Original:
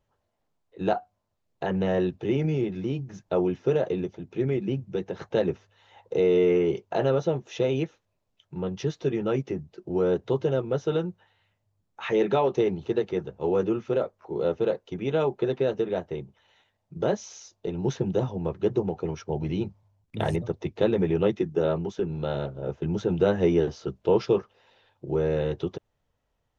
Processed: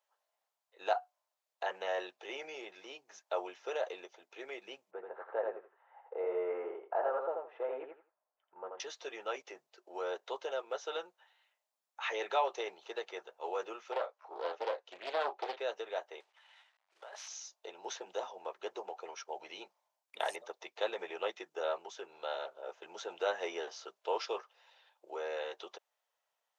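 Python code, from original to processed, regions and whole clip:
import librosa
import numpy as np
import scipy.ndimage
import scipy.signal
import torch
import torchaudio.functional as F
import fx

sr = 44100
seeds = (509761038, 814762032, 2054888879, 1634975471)

y = fx.chain(x, sr, fx.lowpass(hz=1500.0, slope=24),
    fx.echo_feedback(ms=83, feedback_pct=19, wet_db=-4), at=(4.91, 8.8))
y = fx.chain(y, sr, fx.air_absorb(metres=75.0),
    fx.doubler(ms=34.0, db=-8.0),
    fx.doppler_dist(depth_ms=0.52), at=(13.92, 15.58))
y = fx.chain(y, sr, fx.cvsd(bps=64000),
    fx.over_compress(threshold_db=-29.0, ratio=-0.5),
    fx.bandpass_edges(low_hz=760.0, high_hz=3300.0), at=(16.2, 17.28))
y = scipy.signal.sosfilt(scipy.signal.butter(4, 630.0, 'highpass', fs=sr, output='sos'), y)
y = fx.high_shelf(y, sr, hz=5600.0, db=5.5)
y = y * 10.0 ** (-3.5 / 20.0)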